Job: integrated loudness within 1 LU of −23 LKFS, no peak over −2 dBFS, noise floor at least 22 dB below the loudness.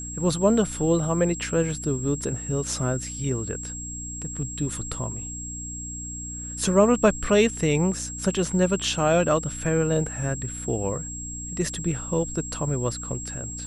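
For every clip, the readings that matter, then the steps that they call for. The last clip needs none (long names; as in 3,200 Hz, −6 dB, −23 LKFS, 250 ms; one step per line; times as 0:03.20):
mains hum 60 Hz; hum harmonics up to 300 Hz; level of the hum −35 dBFS; interfering tone 7,600 Hz; level of the tone −34 dBFS; integrated loudness −25.5 LKFS; sample peak −5.5 dBFS; target loudness −23.0 LKFS
→ hum removal 60 Hz, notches 5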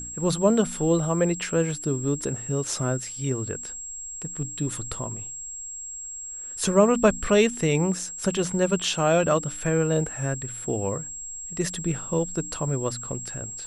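mains hum none found; interfering tone 7,600 Hz; level of the tone −34 dBFS
→ notch filter 7,600 Hz, Q 30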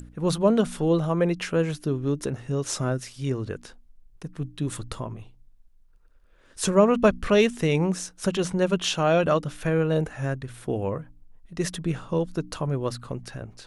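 interfering tone none found; integrated loudness −25.5 LKFS; sample peak −5.5 dBFS; target loudness −23.0 LKFS
→ level +2.5 dB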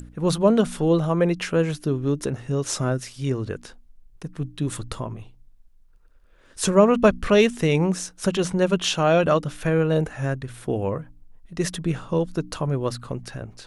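integrated loudness −23.0 LKFS; sample peak −3.0 dBFS; background noise floor −53 dBFS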